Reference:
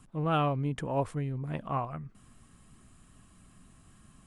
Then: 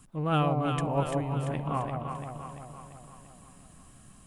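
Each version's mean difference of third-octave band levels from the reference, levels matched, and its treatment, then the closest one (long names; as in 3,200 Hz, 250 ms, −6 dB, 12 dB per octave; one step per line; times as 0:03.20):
6.0 dB: high-shelf EQ 6,300 Hz +8.5 dB
delay that swaps between a low-pass and a high-pass 171 ms, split 800 Hz, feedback 74%, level −2 dB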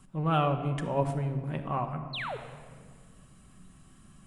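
4.0 dB: sound drawn into the spectrogram fall, 0:02.13–0:02.37, 390–4,500 Hz −36 dBFS
rectangular room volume 2,800 cubic metres, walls mixed, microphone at 1.1 metres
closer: second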